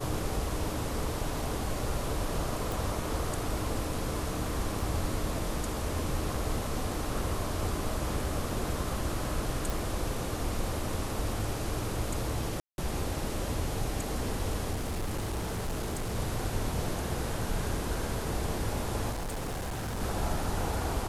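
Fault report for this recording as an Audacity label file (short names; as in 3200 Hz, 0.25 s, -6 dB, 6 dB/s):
2.720000	2.720000	pop
4.800000	4.800000	gap 3 ms
9.700000	9.700000	pop
12.600000	12.780000	gap 0.181 s
14.720000	16.160000	clipped -29 dBFS
19.110000	20.010000	clipped -31.5 dBFS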